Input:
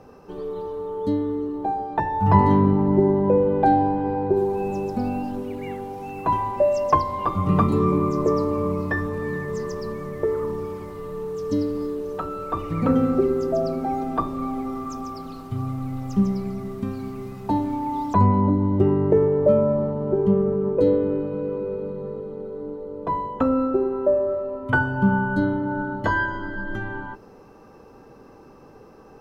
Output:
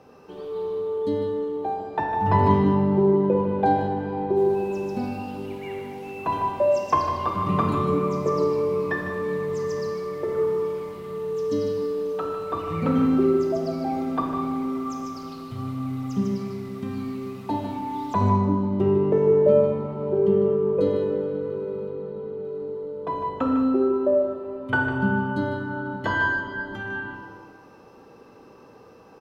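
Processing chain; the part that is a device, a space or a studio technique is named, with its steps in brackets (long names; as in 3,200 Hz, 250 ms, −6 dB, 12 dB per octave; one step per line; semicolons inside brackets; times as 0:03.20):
PA in a hall (high-pass filter 140 Hz 6 dB per octave; parametric band 3,200 Hz +5.5 dB 1.2 octaves; single-tap delay 152 ms −9 dB; convolution reverb RT60 1.7 s, pre-delay 25 ms, DRR 2.5 dB)
0:21.90–0:22.44: high-shelf EQ 5,700 Hz −8.5 dB
level −3.5 dB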